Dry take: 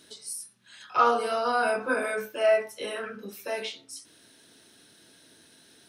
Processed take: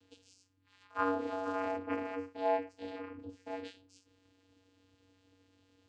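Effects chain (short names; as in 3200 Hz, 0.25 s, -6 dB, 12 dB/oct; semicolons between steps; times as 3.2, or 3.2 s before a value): vocoder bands 8, square 94.4 Hz; gain -8.5 dB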